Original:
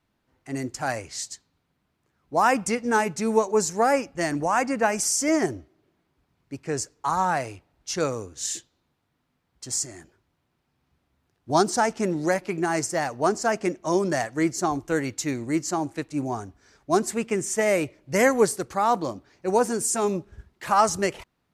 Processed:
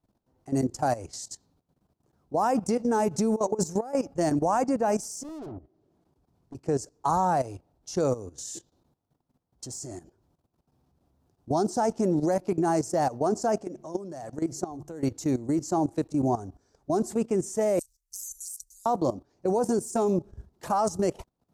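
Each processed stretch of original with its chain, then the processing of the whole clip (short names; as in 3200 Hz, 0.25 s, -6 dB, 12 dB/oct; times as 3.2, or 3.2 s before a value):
3.11–3.95 negative-ratio compressor -27 dBFS + mismatched tape noise reduction encoder only
5.23–6.55 treble ducked by the level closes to 700 Hz, closed at -22.5 dBFS + tube stage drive 42 dB, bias 0.25
13.56–15.03 de-hum 72.85 Hz, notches 3 + compressor 5:1, threshold -28 dBFS
17.79–18.86 inverse Chebyshev band-stop 150–1500 Hz, stop band 70 dB + high shelf 7400 Hz +10.5 dB
whole clip: de-esser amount 45%; EQ curve 750 Hz 0 dB, 2100 Hz -17 dB, 5700 Hz -5 dB; level quantiser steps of 15 dB; gain +6.5 dB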